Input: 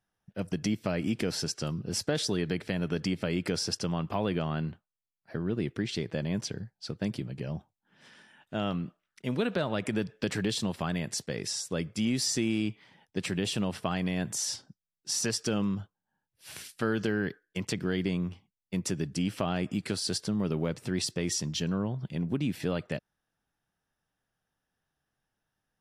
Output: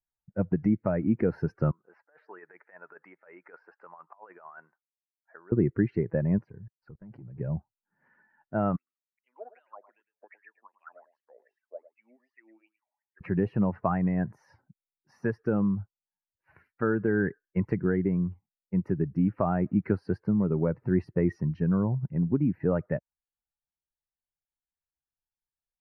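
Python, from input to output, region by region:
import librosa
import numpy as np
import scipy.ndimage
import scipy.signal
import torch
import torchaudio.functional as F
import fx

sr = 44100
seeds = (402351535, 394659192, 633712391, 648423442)

y = fx.chain(x, sr, fx.highpass(hz=1100.0, slope=12),
    fx.spacing_loss(db_at_10k=36),
    fx.over_compress(threshold_db=-48.0, ratio=-0.5), at=(1.71, 5.52))
y = fx.chain(y, sr, fx.leveller(passes=2),
    fx.level_steps(step_db=22), at=(6.38, 7.38))
y = fx.chain(y, sr, fx.steep_highpass(hz=230.0, slope=36),
    fx.wah_lfo(hz=2.6, low_hz=610.0, high_hz=3300.0, q=9.2),
    fx.echo_single(ms=108, db=-10.5), at=(8.76, 13.21))
y = fx.bin_expand(y, sr, power=1.5)
y = scipy.signal.sosfilt(scipy.signal.cheby2(4, 40, 3200.0, 'lowpass', fs=sr, output='sos'), y)
y = fx.rider(y, sr, range_db=4, speed_s=0.5)
y = y * librosa.db_to_amplitude(8.5)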